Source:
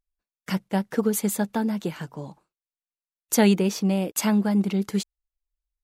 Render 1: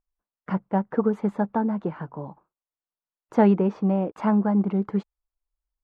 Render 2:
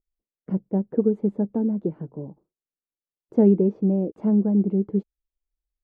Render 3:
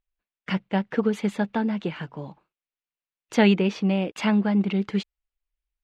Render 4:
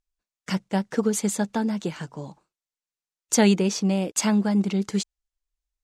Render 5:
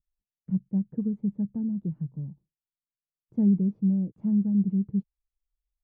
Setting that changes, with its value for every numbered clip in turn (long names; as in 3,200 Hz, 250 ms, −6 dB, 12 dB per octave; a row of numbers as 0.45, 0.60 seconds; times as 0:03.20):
low-pass with resonance, frequency: 1,100, 410, 2,800, 7,200, 150 Hertz